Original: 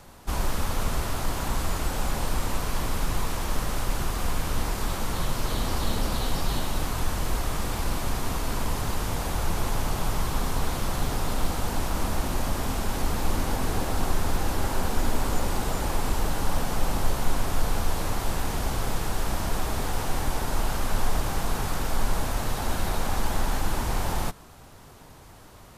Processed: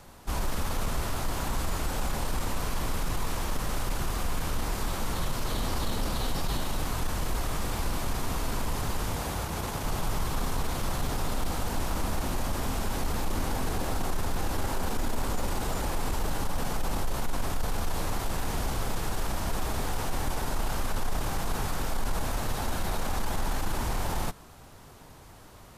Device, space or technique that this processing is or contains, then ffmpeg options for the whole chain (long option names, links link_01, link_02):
soft clipper into limiter: -filter_complex "[0:a]asoftclip=type=tanh:threshold=-12dB,alimiter=limit=-19dB:level=0:latency=1:release=17,asettb=1/sr,asplit=3[link_01][link_02][link_03];[link_01]atrim=end=9.154[link_04];[link_02]atrim=start=9.15:end=9.85,asetpts=PTS-STARTPTS,afade=type=in:duration=0.004:curve=qsin,afade=type=out:start_time=0.696:duration=0.004:curve=qsin,highpass=52[link_05];[link_03]atrim=start=9.846[link_06];[link_04][link_05]acrossfade=duration=0.004:curve1=hsin:curve2=qsin[link_07];[link_07][link_06]acrossfade=duration=0.004:curve1=qsin:curve2=hsin,volume=-1.5dB"